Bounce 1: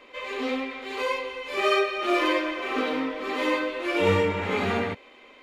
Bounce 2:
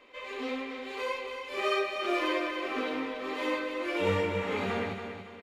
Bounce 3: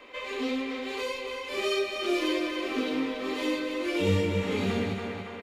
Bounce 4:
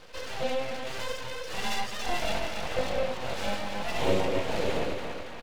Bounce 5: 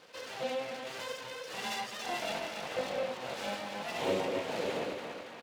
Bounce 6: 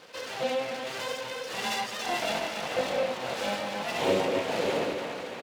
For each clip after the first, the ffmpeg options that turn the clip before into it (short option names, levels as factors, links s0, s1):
-af "aecho=1:1:281|562|843|1124:0.398|0.155|0.0606|0.0236,volume=0.473"
-filter_complex "[0:a]acrossover=split=400|3000[s0][s1][s2];[s1]acompressor=threshold=0.00631:ratio=10[s3];[s0][s3][s2]amix=inputs=3:normalize=0,volume=2.37"
-af "aeval=exprs='abs(val(0))':c=same,equalizer=f=500:w=3.4:g=11"
-af "highpass=180,volume=0.596"
-af "aecho=1:1:639:0.237,volume=2"